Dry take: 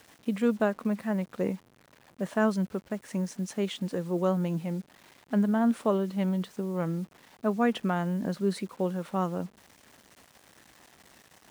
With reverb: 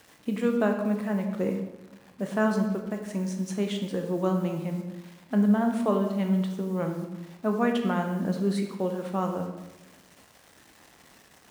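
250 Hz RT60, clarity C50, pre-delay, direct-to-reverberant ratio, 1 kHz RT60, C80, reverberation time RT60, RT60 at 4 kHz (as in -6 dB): 1.2 s, 6.0 dB, 17 ms, 3.5 dB, 1.0 s, 8.5 dB, 1.1 s, 0.75 s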